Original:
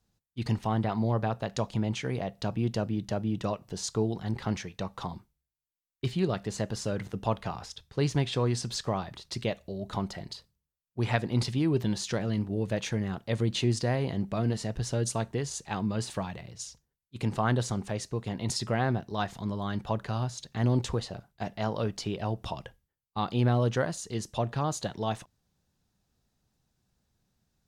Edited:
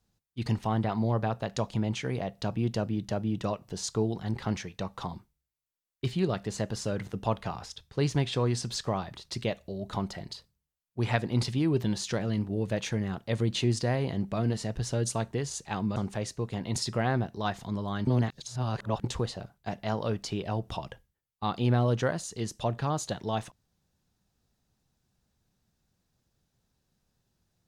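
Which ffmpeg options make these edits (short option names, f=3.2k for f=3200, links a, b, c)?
-filter_complex "[0:a]asplit=4[a][b][c][d];[a]atrim=end=15.962[e];[b]atrim=start=17.698:end=19.812[f];[c]atrim=start=19.808:end=20.782,asetpts=PTS-STARTPTS,areverse[g];[d]atrim=start=20.778[h];[e][f]acrossfade=d=0.004:c1=hsin:c2=hsin[i];[i][g]acrossfade=d=0.004:c1=hsin:c2=hsin[j];[j][h]acrossfade=d=0.004:c1=hsin:c2=hsin"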